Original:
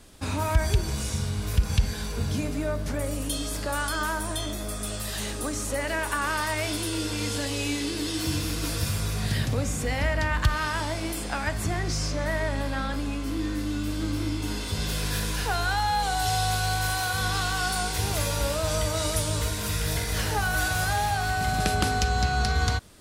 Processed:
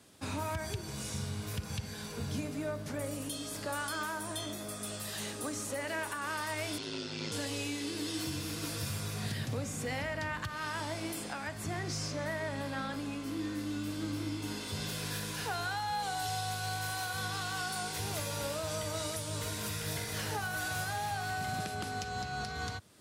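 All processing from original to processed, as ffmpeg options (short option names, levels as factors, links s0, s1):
-filter_complex "[0:a]asettb=1/sr,asplit=3[s0][s1][s2];[s0]atrim=end=3.814[s3];[s1]atrim=start=3.81:end=6.02,asetpts=PTS-STARTPTS,afade=t=in:d=0.004:c=qsin,afade=t=out:st=2.206:d=0.004:c=qsin,highpass=f=48:p=1,asoftclip=type=hard:threshold=0.0891[s4];[s2]atrim=start=6.016[s5];[s3][s4]acrossfade=d=0.004:c1=hsin:c2=qsin[s6];[s6][s5]acrossfade=d=0.004:c1=qsin:c2=hsin,asettb=1/sr,asplit=3[s7][s8][s9];[s7]atrim=end=6.784[s10];[s8]atrim=start=6.78:end=7.32,asetpts=PTS-STARTPTS,afade=t=in:d=0.004:c=qsin,afade=t=out:st=0.536:d=0.004:c=qsin,lowpass=f=5100:w=0.5412,lowpass=f=5100:w=1.3066,aeval=exprs='val(0)*sin(2*PI*53*n/s)':c=same,aemphasis=mode=production:type=50fm[s11];[s9]atrim=start=7.316[s12];[s10][s11]acrossfade=d=0.004:c1=hsin:c2=qsin[s13];[s13][s12]acrossfade=d=0.004:c1=qsin:c2=hsin,highpass=f=95:w=0.5412,highpass=f=95:w=1.3066,alimiter=limit=0.106:level=0:latency=1:release=335,volume=0.473"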